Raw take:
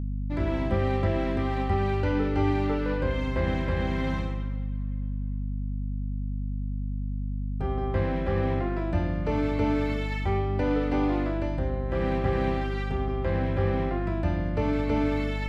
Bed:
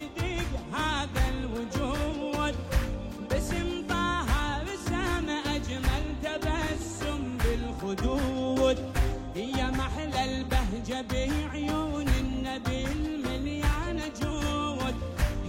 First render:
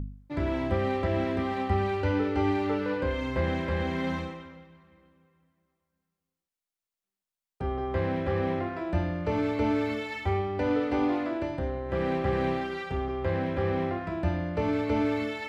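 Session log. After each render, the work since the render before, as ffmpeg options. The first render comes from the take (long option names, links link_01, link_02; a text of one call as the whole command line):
ffmpeg -i in.wav -af "bandreject=frequency=50:width_type=h:width=4,bandreject=frequency=100:width_type=h:width=4,bandreject=frequency=150:width_type=h:width=4,bandreject=frequency=200:width_type=h:width=4,bandreject=frequency=250:width_type=h:width=4,bandreject=frequency=300:width_type=h:width=4,bandreject=frequency=350:width_type=h:width=4" out.wav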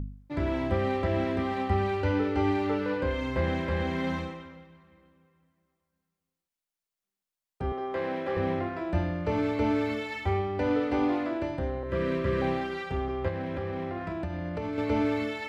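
ffmpeg -i in.wav -filter_complex "[0:a]asettb=1/sr,asplit=3[link_01][link_02][link_03];[link_01]atrim=end=7.724[link_04];[link_02]atrim=start=7.72:end=8.37,asetpts=PTS-STARTPTS,afade=type=in:duration=0.004:curve=qsin,afade=type=out:start_time=0.646:duration=0.004:curve=qsin,highpass=300[link_05];[link_03]atrim=start=8.366[link_06];[link_04][link_05]acrossfade=duration=0.004:curve1=hsin:curve2=qsin[link_07];[link_07][link_06]acrossfade=duration=0.004:curve1=qsin:curve2=hsin,asettb=1/sr,asplit=3[link_08][link_09][link_10];[link_08]atrim=end=11.834[link_11];[link_09]atrim=start=11.83:end=12.42,asetpts=PTS-STARTPTS,afade=type=in:duration=0.004:curve=qsin,afade=type=out:start_time=0.586:duration=0.004:curve=qsin,asuperstop=centerf=770:order=20:qfactor=4.4[link_12];[link_10]atrim=start=12.416[link_13];[link_11][link_12]acrossfade=duration=0.004:curve1=hsin:curve2=qsin[link_14];[link_14][link_13]acrossfade=duration=0.004:curve1=qsin:curve2=hsin,asettb=1/sr,asplit=3[link_15][link_16][link_17];[link_15]atrim=end=13.284[link_18];[link_16]atrim=start=13.28:end=14.78,asetpts=PTS-STARTPTS,afade=type=in:duration=0.004:curve=qsin,afade=type=out:start_time=1.496:duration=0.004:curve=qsin,acompressor=threshold=-29dB:ratio=6:attack=3.2:release=140:knee=1:detection=peak[link_19];[link_17]atrim=start=14.776[link_20];[link_18][link_19]acrossfade=duration=0.004:curve1=hsin:curve2=qsin[link_21];[link_21][link_20]acrossfade=duration=0.004:curve1=qsin:curve2=hsin" out.wav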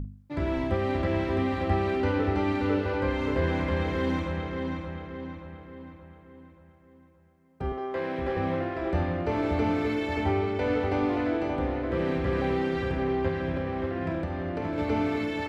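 ffmpeg -i in.wav -filter_complex "[0:a]asplit=2[link_01][link_02];[link_02]adelay=49,volume=-12dB[link_03];[link_01][link_03]amix=inputs=2:normalize=0,asplit=2[link_04][link_05];[link_05]adelay=577,lowpass=frequency=3700:poles=1,volume=-4dB,asplit=2[link_06][link_07];[link_07]adelay=577,lowpass=frequency=3700:poles=1,volume=0.5,asplit=2[link_08][link_09];[link_09]adelay=577,lowpass=frequency=3700:poles=1,volume=0.5,asplit=2[link_10][link_11];[link_11]adelay=577,lowpass=frequency=3700:poles=1,volume=0.5,asplit=2[link_12][link_13];[link_13]adelay=577,lowpass=frequency=3700:poles=1,volume=0.5,asplit=2[link_14][link_15];[link_15]adelay=577,lowpass=frequency=3700:poles=1,volume=0.5[link_16];[link_04][link_06][link_08][link_10][link_12][link_14][link_16]amix=inputs=7:normalize=0" out.wav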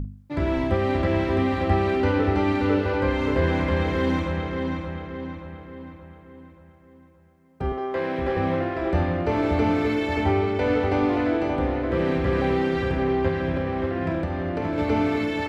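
ffmpeg -i in.wav -af "volume=4.5dB" out.wav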